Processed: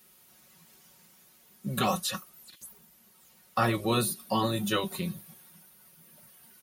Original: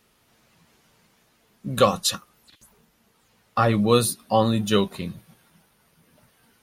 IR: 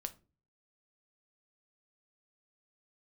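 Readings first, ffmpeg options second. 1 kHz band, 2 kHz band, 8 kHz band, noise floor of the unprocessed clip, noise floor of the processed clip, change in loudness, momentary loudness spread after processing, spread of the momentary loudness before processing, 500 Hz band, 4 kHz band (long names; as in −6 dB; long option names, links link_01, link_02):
−6.0 dB, −2.5 dB, −6.5 dB, −64 dBFS, −60 dBFS, −7.5 dB, 19 LU, 16 LU, −10.5 dB, −6.0 dB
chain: -filter_complex "[0:a]acrossover=split=2800[link_01][link_02];[link_02]acompressor=threshold=-38dB:ratio=4:attack=1:release=60[link_03];[link_01][link_03]amix=inputs=2:normalize=0,highpass=50,aemphasis=mode=production:type=50fm,aecho=1:1:5.4:0.61,afftfilt=real='re*lt(hypot(re,im),0.794)':imag='im*lt(hypot(re,im),0.794)':win_size=1024:overlap=0.75,volume=-4dB"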